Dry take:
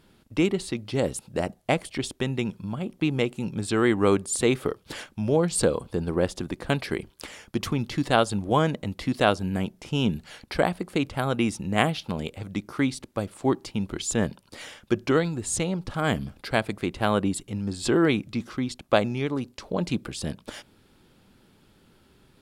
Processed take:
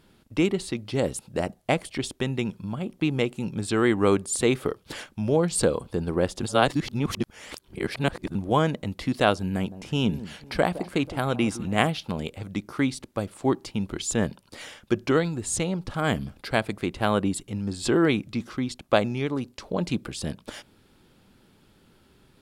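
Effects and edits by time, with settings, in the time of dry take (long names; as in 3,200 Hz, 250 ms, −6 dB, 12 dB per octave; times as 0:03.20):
0:06.43–0:08.35: reverse
0:09.39–0:11.87: delay that swaps between a low-pass and a high-pass 162 ms, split 1,000 Hz, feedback 61%, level −14 dB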